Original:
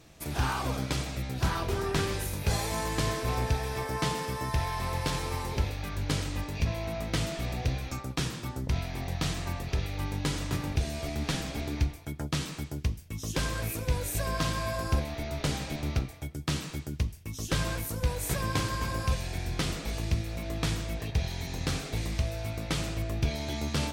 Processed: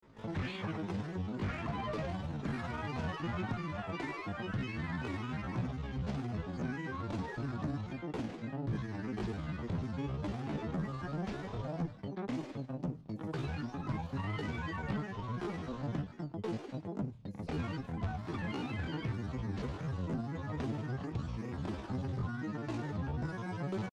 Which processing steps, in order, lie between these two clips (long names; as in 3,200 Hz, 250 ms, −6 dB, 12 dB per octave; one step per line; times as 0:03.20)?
parametric band 240 Hz −11.5 dB 0.21 octaves
harmonic generator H 3 −7 dB, 4 −23 dB, 5 −12 dB, 6 −25 dB, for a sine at −15 dBFS
pitch shifter +12 semitones
granular cloud, spray 16 ms, pitch spread up and down by 7 semitones
head-to-tape spacing loss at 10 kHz 29 dB